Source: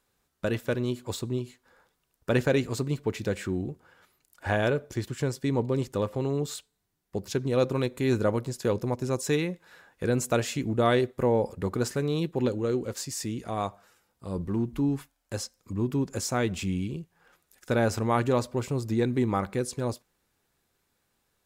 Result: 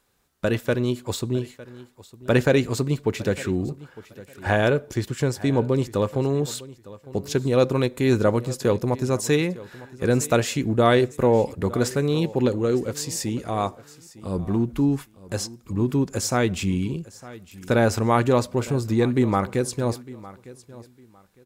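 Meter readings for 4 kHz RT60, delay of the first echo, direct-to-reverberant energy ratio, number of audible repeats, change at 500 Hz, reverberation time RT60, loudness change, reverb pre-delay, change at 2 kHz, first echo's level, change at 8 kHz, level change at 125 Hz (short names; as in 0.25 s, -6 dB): none, 0.906 s, none, 2, +5.5 dB, none, +5.5 dB, none, +5.5 dB, -19.0 dB, +5.5 dB, +5.5 dB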